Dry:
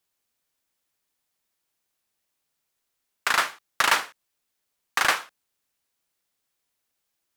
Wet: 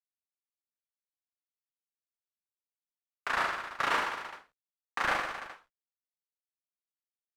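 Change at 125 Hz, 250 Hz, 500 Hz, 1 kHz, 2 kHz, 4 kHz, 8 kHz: no reading, -1.5 dB, -2.5 dB, -5.0 dB, -7.0 dB, -11.5 dB, -17.0 dB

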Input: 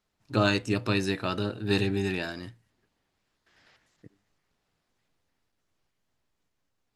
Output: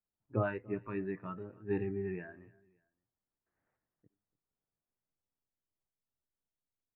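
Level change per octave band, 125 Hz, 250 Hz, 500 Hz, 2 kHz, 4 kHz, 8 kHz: -10.0 dB, -10.5 dB, -7.0 dB, -14.0 dB, under -35 dB, under -30 dB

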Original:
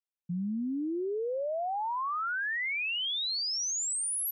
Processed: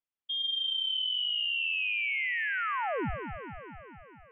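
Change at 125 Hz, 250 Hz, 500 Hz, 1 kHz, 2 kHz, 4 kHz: no reading, -9.5 dB, -6.5 dB, -2.5 dB, +3.5 dB, +5.0 dB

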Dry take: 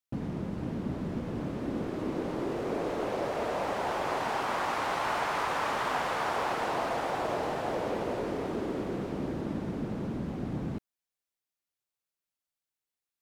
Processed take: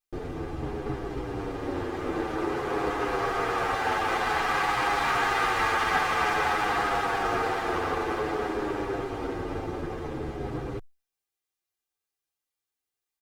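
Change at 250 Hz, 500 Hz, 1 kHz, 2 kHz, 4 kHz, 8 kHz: 0.0 dB, +2.5 dB, +5.5 dB, +8.5 dB, +6.0 dB, +4.5 dB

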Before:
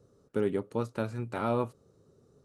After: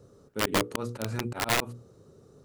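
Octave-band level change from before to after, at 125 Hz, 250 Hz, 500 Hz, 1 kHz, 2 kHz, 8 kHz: +1.0 dB, -0.5 dB, -2.5 dB, +4.0 dB, +12.0 dB, no reading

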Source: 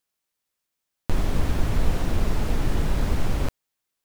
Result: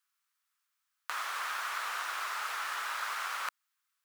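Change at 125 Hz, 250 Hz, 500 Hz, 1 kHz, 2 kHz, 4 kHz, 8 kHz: under -40 dB, under -40 dB, -19.5 dB, +1.5 dB, +3.5 dB, -0.5 dB, -1.5 dB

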